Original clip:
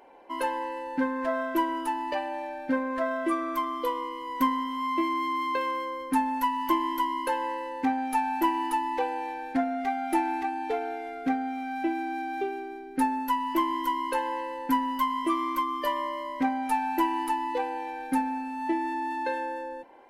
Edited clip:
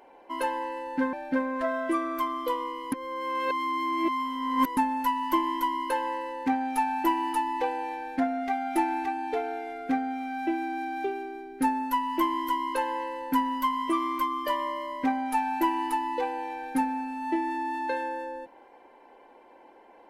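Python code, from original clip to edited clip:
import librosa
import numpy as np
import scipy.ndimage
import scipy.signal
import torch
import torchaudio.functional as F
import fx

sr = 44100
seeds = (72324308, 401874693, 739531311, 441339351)

y = fx.edit(x, sr, fx.cut(start_s=1.13, length_s=1.37),
    fx.reverse_span(start_s=4.29, length_s=1.85), tone=tone)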